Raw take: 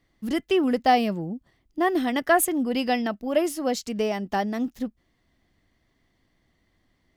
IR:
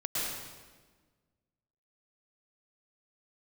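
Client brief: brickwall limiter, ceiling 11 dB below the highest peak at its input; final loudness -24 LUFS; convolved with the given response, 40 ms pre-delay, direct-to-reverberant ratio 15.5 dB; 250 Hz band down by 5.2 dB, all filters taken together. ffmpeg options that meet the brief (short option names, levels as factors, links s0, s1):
-filter_complex "[0:a]equalizer=f=250:t=o:g=-6.5,alimiter=limit=0.1:level=0:latency=1,asplit=2[s0][s1];[1:a]atrim=start_sample=2205,adelay=40[s2];[s1][s2]afir=irnorm=-1:irlink=0,volume=0.0794[s3];[s0][s3]amix=inputs=2:normalize=0,volume=2.11"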